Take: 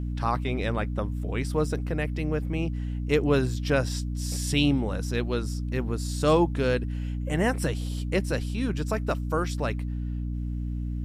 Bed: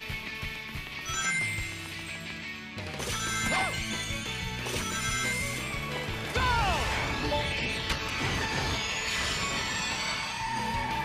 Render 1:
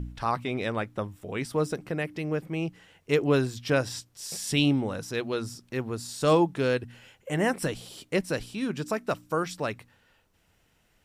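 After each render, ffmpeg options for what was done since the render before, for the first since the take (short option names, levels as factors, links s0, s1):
-af "bandreject=f=60:t=h:w=4,bandreject=f=120:t=h:w=4,bandreject=f=180:t=h:w=4,bandreject=f=240:t=h:w=4,bandreject=f=300:t=h:w=4"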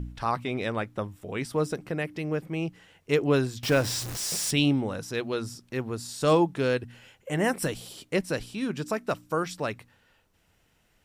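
-filter_complex "[0:a]asettb=1/sr,asplit=3[s0][s1][s2];[s0]atrim=end=3.634[s3];[s1]atrim=start=3.63:end=4.51,asetpts=PTS-STARTPTS,afade=t=in:d=0.004:c=qsin,afade=t=out:st=0.876:d=0.004:c=qsin,aeval=exprs='val(0)+0.5*0.0355*sgn(val(0))':c=same[s4];[s2]atrim=start=4.506[s5];[s3][s4]acrossfade=d=0.004:c1=hsin:c2=qsin[s6];[s6][s5]acrossfade=d=0.004:c1=qsin:c2=hsin,asettb=1/sr,asplit=3[s7][s8][s9];[s7]atrim=end=7.444[s10];[s8]atrim=start=7.44:end=7.93,asetpts=PTS-STARTPTS,afade=t=in:d=0.004:c=qsin,afade=t=out:st=0.486:d=0.004:c=qsin,highshelf=f=10000:g=8.5[s11];[s9]atrim=start=7.926[s12];[s10][s11]acrossfade=d=0.004:c1=hsin:c2=qsin[s13];[s13][s12]acrossfade=d=0.004:c1=qsin:c2=hsin"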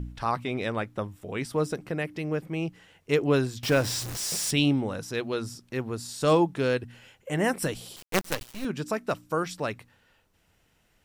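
-filter_complex "[0:a]asettb=1/sr,asplit=3[s0][s1][s2];[s0]atrim=end=7.964[s3];[s1]atrim=start=7.96:end=8.65,asetpts=PTS-STARTPTS,afade=t=in:d=0.004:c=qsin,afade=t=out:st=0.686:d=0.004:c=qsin,acrusher=bits=4:dc=4:mix=0:aa=0.000001[s4];[s2]atrim=start=8.646[s5];[s3][s4]acrossfade=d=0.004:c1=hsin:c2=qsin[s6];[s6][s5]acrossfade=d=0.004:c1=qsin:c2=hsin"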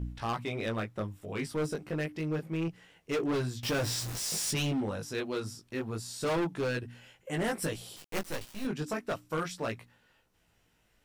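-af "flanger=delay=17:depth=2.7:speed=0.29,asoftclip=type=hard:threshold=0.0447"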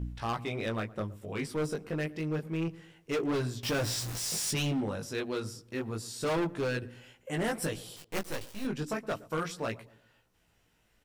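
-filter_complex "[0:a]asplit=2[s0][s1];[s1]adelay=118,lowpass=f=930:p=1,volume=0.126,asplit=2[s2][s3];[s3]adelay=118,lowpass=f=930:p=1,volume=0.44,asplit=2[s4][s5];[s5]adelay=118,lowpass=f=930:p=1,volume=0.44,asplit=2[s6][s7];[s7]adelay=118,lowpass=f=930:p=1,volume=0.44[s8];[s0][s2][s4][s6][s8]amix=inputs=5:normalize=0"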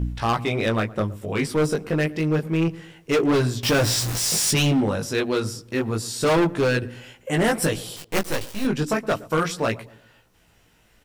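-af "volume=3.55"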